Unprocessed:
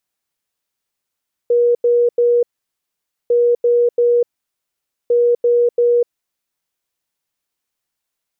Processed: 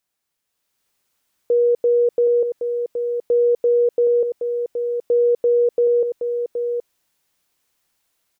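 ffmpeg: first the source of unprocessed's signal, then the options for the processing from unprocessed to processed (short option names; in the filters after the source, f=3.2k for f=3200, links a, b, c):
-f lavfi -i "aevalsrc='0.316*sin(2*PI*479*t)*clip(min(mod(mod(t,1.8),0.34),0.25-mod(mod(t,1.8),0.34))/0.005,0,1)*lt(mod(t,1.8),1.02)':d=5.4:s=44100"
-af "alimiter=limit=-21dB:level=0:latency=1:release=31,dynaudnorm=f=440:g=3:m=8.5dB,aecho=1:1:771:0.447"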